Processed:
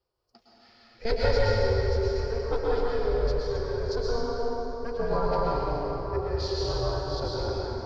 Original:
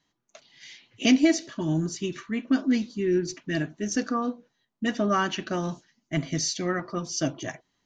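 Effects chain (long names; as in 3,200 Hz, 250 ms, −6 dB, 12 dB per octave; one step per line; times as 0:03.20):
high-pass filter 100 Hz 24 dB per octave
flat-topped bell 3,100 Hz −13 dB
formants moved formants −5 semitones
ring modulation 230 Hz
dense smooth reverb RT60 3.9 s, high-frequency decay 0.65×, pre-delay 100 ms, DRR −6 dB
level −2 dB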